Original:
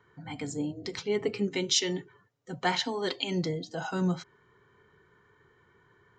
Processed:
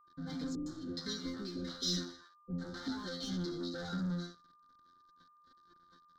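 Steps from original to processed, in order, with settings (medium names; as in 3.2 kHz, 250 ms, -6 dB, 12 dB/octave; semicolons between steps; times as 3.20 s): treble shelf 3 kHz -12 dB; compression 5:1, threshold -32 dBFS, peak gain reduction 8 dB; chord resonator F3 fifth, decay 0.45 s; flange 1.4 Hz, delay 2.9 ms, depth 1.5 ms, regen -4%; waveshaping leveller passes 5; FFT filter 270 Hz 0 dB, 650 Hz -13 dB, 1 kHz -14 dB, 1.5 kHz +1 dB, 2.6 kHz -27 dB, 3.8 kHz +5 dB, 5.5 kHz +2 dB, 9.9 kHz -15 dB; 0.55–2.88 s: bands offset in time lows, highs 110 ms, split 590 Hz; whistle 1.2 kHz -72 dBFS; trim +9.5 dB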